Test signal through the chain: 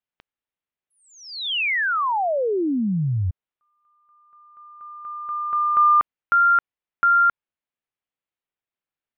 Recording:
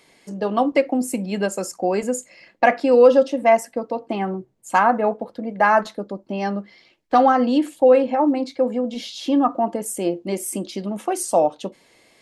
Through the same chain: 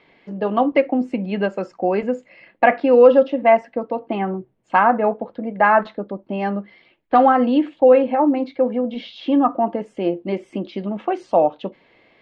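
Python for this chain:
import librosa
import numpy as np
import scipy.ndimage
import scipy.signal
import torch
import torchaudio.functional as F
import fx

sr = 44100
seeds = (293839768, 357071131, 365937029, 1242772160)

y = scipy.signal.sosfilt(scipy.signal.butter(4, 3200.0, 'lowpass', fs=sr, output='sos'), x)
y = y * librosa.db_to_amplitude(1.5)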